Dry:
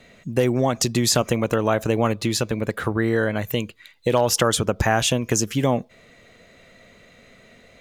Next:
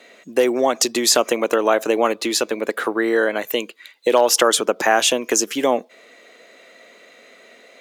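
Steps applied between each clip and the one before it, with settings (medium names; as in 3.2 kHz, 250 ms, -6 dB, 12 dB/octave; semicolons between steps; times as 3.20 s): high-pass 300 Hz 24 dB/octave; trim +4.5 dB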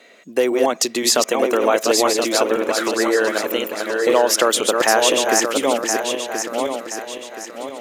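backward echo that repeats 513 ms, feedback 62%, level -3.5 dB; trim -1 dB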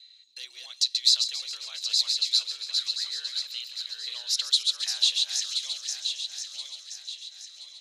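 ladder band-pass 4.2 kHz, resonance 85%; feedback echo behind a high-pass 136 ms, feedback 73%, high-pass 3.7 kHz, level -11 dB; on a send at -23 dB: reverberation RT60 0.35 s, pre-delay 13 ms; on the sum: trim +2 dB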